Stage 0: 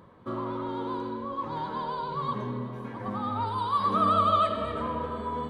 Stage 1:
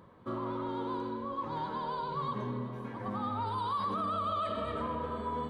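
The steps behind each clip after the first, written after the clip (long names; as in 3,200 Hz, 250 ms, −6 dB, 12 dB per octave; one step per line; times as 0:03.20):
brickwall limiter −23 dBFS, peak gain reduction 10 dB
level −3 dB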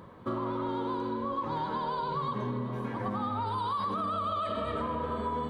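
downward compressor, threshold −36 dBFS, peak gain reduction 6.5 dB
level +7 dB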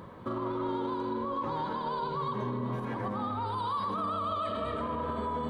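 brickwall limiter −29 dBFS, peak gain reduction 7 dB
delay with a band-pass on its return 95 ms, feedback 82%, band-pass 530 Hz, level −12 dB
level +3 dB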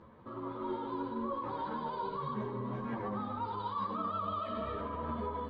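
automatic gain control gain up to 5.5 dB
high-frequency loss of the air 160 metres
string-ensemble chorus
level −6 dB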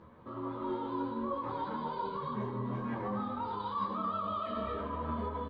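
double-tracking delay 25 ms −6 dB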